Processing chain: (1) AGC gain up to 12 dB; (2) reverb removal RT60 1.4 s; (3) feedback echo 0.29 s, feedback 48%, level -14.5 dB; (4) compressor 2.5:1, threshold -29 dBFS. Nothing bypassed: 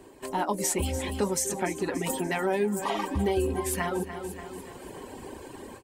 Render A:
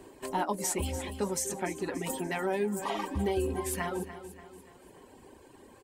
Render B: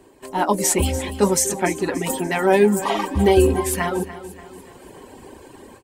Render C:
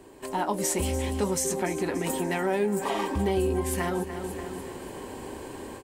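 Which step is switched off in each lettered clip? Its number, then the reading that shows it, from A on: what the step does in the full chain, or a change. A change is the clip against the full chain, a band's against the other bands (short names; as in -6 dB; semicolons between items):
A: 1, momentary loudness spread change -6 LU; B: 4, mean gain reduction 5.0 dB; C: 2, momentary loudness spread change -3 LU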